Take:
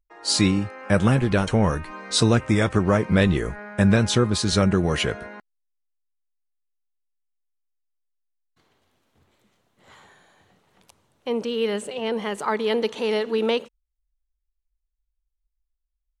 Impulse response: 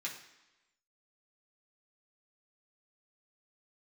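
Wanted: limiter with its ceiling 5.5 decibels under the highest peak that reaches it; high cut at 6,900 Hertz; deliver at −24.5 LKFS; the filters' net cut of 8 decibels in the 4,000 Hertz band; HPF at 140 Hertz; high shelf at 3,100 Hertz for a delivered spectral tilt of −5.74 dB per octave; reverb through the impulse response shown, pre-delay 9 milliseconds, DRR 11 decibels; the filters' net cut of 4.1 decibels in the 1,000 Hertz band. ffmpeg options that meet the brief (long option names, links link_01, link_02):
-filter_complex "[0:a]highpass=140,lowpass=6900,equalizer=frequency=1000:width_type=o:gain=-4.5,highshelf=frequency=3100:gain=-5,equalizer=frequency=4000:width_type=o:gain=-5.5,alimiter=limit=-12.5dB:level=0:latency=1,asplit=2[link_01][link_02];[1:a]atrim=start_sample=2205,adelay=9[link_03];[link_02][link_03]afir=irnorm=-1:irlink=0,volume=-12dB[link_04];[link_01][link_04]amix=inputs=2:normalize=0,volume=1dB"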